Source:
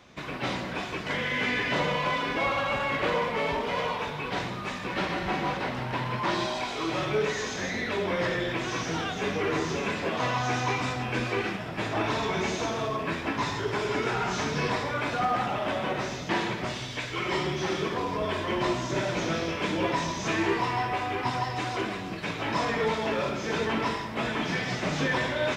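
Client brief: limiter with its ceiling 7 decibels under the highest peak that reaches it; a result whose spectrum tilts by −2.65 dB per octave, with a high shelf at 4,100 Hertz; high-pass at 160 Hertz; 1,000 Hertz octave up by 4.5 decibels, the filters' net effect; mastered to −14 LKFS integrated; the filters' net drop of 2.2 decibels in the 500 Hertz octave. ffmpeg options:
ffmpeg -i in.wav -af "highpass=160,equalizer=frequency=500:width_type=o:gain=-4.5,equalizer=frequency=1000:width_type=o:gain=7,highshelf=frequency=4100:gain=-7.5,volume=15.5dB,alimiter=limit=-4.5dB:level=0:latency=1" out.wav

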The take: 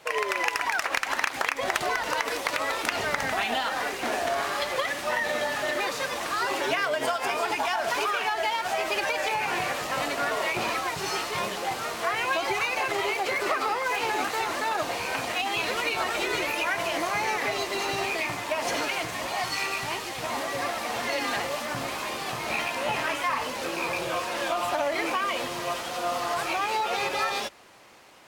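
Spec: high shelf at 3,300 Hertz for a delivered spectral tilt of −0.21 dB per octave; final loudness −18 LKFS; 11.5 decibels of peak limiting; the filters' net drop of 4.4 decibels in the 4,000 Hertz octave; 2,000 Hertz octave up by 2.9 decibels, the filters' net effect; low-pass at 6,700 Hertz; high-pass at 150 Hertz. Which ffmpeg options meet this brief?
ffmpeg -i in.wav -af "highpass=150,lowpass=6700,equalizer=frequency=2000:width_type=o:gain=6.5,highshelf=frequency=3300:gain=-6.5,equalizer=frequency=4000:width_type=o:gain=-4,volume=10.5dB,alimiter=limit=-9dB:level=0:latency=1" out.wav

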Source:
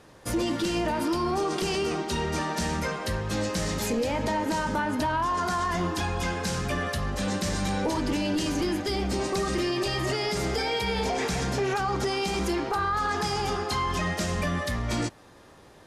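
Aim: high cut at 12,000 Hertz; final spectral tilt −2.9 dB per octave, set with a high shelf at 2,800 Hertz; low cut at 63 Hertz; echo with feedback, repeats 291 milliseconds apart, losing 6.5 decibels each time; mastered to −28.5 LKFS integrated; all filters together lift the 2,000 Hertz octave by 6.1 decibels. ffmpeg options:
ffmpeg -i in.wav -af "highpass=63,lowpass=12000,equalizer=frequency=2000:width_type=o:gain=4,highshelf=frequency=2800:gain=9,aecho=1:1:291|582|873|1164|1455|1746:0.473|0.222|0.105|0.0491|0.0231|0.0109,volume=-5dB" out.wav

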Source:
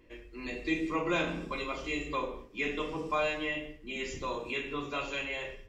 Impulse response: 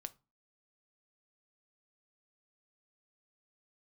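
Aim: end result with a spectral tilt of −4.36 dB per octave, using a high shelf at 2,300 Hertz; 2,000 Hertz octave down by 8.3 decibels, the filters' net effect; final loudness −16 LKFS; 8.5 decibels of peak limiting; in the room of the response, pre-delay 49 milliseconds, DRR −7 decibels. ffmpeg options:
-filter_complex "[0:a]equalizer=frequency=2000:width_type=o:gain=-5.5,highshelf=frequency=2300:gain=-8.5,alimiter=level_in=5dB:limit=-24dB:level=0:latency=1,volume=-5dB,asplit=2[link_01][link_02];[1:a]atrim=start_sample=2205,adelay=49[link_03];[link_02][link_03]afir=irnorm=-1:irlink=0,volume=11dB[link_04];[link_01][link_04]amix=inputs=2:normalize=0,volume=16dB"

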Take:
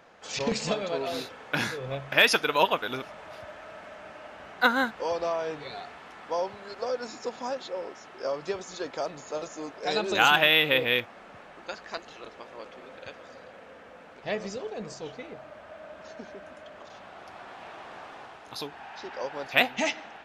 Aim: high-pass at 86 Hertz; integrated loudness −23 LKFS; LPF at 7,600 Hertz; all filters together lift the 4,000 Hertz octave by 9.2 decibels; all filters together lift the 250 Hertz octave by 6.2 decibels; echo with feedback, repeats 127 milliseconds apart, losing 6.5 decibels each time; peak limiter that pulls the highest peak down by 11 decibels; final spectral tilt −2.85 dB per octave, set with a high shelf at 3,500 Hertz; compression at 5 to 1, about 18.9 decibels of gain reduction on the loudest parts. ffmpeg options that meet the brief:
ffmpeg -i in.wav -af "highpass=86,lowpass=7600,equalizer=frequency=250:width_type=o:gain=7.5,highshelf=frequency=3500:gain=6,equalizer=frequency=4000:width_type=o:gain=8,acompressor=threshold=-32dB:ratio=5,alimiter=level_in=0.5dB:limit=-24dB:level=0:latency=1,volume=-0.5dB,aecho=1:1:127|254|381|508|635|762:0.473|0.222|0.105|0.0491|0.0231|0.0109,volume=13.5dB" out.wav

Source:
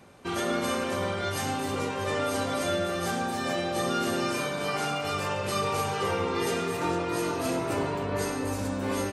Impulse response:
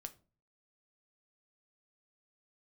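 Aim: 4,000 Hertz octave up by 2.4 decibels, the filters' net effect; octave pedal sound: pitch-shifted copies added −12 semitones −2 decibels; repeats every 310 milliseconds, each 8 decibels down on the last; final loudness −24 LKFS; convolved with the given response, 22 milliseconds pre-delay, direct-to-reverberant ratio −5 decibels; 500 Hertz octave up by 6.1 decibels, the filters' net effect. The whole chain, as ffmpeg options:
-filter_complex "[0:a]equalizer=frequency=500:width_type=o:gain=7.5,equalizer=frequency=4000:width_type=o:gain=3,aecho=1:1:310|620|930|1240|1550:0.398|0.159|0.0637|0.0255|0.0102,asplit=2[link_01][link_02];[1:a]atrim=start_sample=2205,adelay=22[link_03];[link_02][link_03]afir=irnorm=-1:irlink=0,volume=10dB[link_04];[link_01][link_04]amix=inputs=2:normalize=0,asplit=2[link_05][link_06];[link_06]asetrate=22050,aresample=44100,atempo=2,volume=-2dB[link_07];[link_05][link_07]amix=inputs=2:normalize=0,volume=-8dB"

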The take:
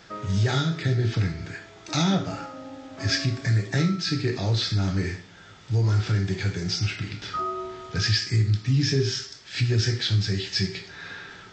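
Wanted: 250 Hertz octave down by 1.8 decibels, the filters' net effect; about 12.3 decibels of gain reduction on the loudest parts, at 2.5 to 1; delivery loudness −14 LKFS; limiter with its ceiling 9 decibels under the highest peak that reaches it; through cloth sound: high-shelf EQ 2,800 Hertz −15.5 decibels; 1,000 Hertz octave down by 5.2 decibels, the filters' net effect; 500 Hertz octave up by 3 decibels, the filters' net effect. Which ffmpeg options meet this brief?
ffmpeg -i in.wav -af "equalizer=frequency=250:width_type=o:gain=-5,equalizer=frequency=500:width_type=o:gain=8.5,equalizer=frequency=1000:width_type=o:gain=-7,acompressor=threshold=-38dB:ratio=2.5,alimiter=level_in=7dB:limit=-24dB:level=0:latency=1,volume=-7dB,highshelf=frequency=2800:gain=-15.5,volume=27.5dB" out.wav

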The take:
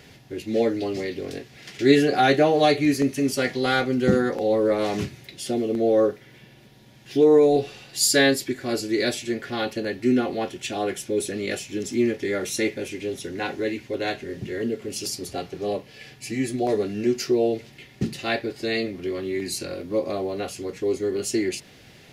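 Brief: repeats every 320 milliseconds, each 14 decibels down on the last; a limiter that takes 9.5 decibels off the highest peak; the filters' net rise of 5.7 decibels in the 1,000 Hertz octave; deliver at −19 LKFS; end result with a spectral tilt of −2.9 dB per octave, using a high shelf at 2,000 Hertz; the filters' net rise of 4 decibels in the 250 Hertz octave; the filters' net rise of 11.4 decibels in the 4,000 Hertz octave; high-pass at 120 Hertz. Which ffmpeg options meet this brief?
ffmpeg -i in.wav -af "highpass=120,equalizer=frequency=250:width_type=o:gain=4.5,equalizer=frequency=1000:width_type=o:gain=6.5,highshelf=frequency=2000:gain=8,equalizer=frequency=4000:width_type=o:gain=5.5,alimiter=limit=-7dB:level=0:latency=1,aecho=1:1:320|640:0.2|0.0399,volume=1dB" out.wav

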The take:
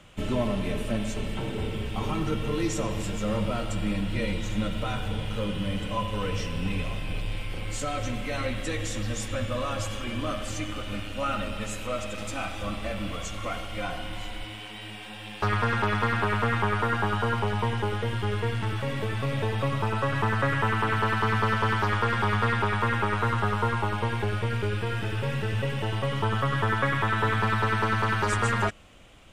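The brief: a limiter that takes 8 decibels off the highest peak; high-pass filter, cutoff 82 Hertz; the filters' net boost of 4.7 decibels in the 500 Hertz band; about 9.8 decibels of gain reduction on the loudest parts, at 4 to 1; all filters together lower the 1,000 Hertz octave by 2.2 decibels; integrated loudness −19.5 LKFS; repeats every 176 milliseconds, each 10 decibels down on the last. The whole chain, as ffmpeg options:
ffmpeg -i in.wav -af "highpass=82,equalizer=frequency=500:width_type=o:gain=6.5,equalizer=frequency=1000:width_type=o:gain=-4.5,acompressor=threshold=-33dB:ratio=4,alimiter=level_in=3.5dB:limit=-24dB:level=0:latency=1,volume=-3.5dB,aecho=1:1:176|352|528|704:0.316|0.101|0.0324|0.0104,volume=17dB" out.wav

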